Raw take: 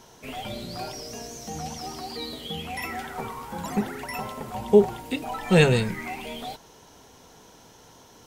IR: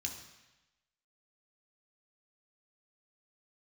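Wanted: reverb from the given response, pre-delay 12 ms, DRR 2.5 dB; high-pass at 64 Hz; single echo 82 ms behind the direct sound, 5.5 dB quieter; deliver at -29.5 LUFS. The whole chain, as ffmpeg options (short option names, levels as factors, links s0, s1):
-filter_complex "[0:a]highpass=64,aecho=1:1:82:0.531,asplit=2[s0][s1];[1:a]atrim=start_sample=2205,adelay=12[s2];[s1][s2]afir=irnorm=-1:irlink=0,volume=0.794[s3];[s0][s3]amix=inputs=2:normalize=0,volume=0.596"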